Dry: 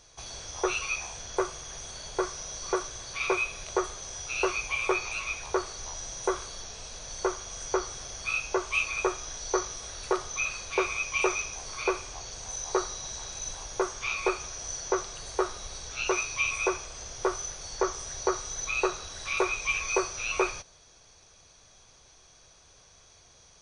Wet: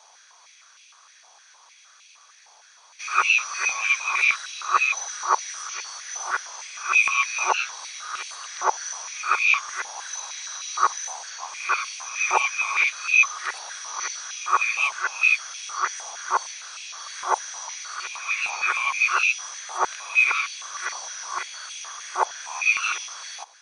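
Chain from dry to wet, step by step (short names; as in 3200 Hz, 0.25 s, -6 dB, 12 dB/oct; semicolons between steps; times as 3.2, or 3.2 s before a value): whole clip reversed; stepped high-pass 6.5 Hz 840–2500 Hz; gain +3 dB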